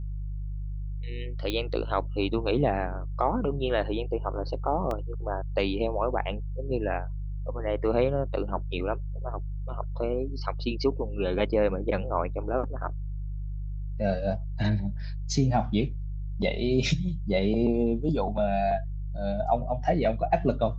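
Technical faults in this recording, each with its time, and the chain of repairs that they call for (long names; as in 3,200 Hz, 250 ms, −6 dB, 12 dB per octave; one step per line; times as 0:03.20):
mains hum 50 Hz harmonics 3 −33 dBFS
0:01.50: click −16 dBFS
0:04.91: drop-out 2.2 ms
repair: click removal
hum removal 50 Hz, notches 3
repair the gap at 0:04.91, 2.2 ms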